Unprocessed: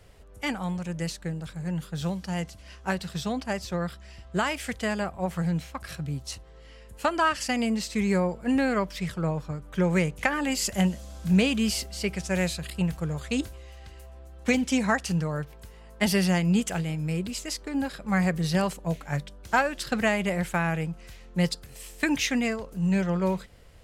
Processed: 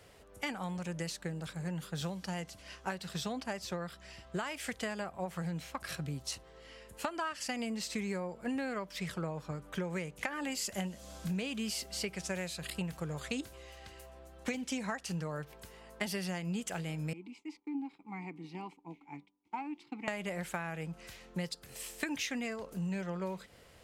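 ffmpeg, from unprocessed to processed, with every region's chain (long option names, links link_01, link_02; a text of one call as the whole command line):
ffmpeg -i in.wav -filter_complex "[0:a]asettb=1/sr,asplit=3[link_01][link_02][link_03];[link_01]atrim=end=17.134[link_04];[link_02]atrim=start=17.13:end=20.08,asetpts=PTS-STARTPTS,afade=type=in:duration=0.004:curve=qsin,afade=type=out:start_time=2.946:duration=0.004:curve=qsin,asplit=3[link_05][link_06][link_07];[link_05]bandpass=frequency=300:width_type=q:width=8,volume=0dB[link_08];[link_06]bandpass=frequency=870:width_type=q:width=8,volume=-6dB[link_09];[link_07]bandpass=frequency=2240:width_type=q:width=8,volume=-9dB[link_10];[link_08][link_09][link_10]amix=inputs=3:normalize=0,agate=range=-33dB:threshold=-56dB:ratio=3:release=100:detection=peak[link_11];[link_03]atrim=start=20.076[link_12];[link_04][link_11]acrossfade=duration=0.004:curve1=hsin:curve2=qsin[link_13];[link_13][link_12]acrossfade=duration=0.004:curve1=qsin:curve2=hsin,highpass=frequency=220:poles=1,acompressor=threshold=-34dB:ratio=6" out.wav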